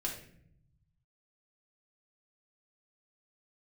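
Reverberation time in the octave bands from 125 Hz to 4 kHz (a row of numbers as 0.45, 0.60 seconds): 1.8, 1.3, 0.75, 0.50, 0.60, 0.45 seconds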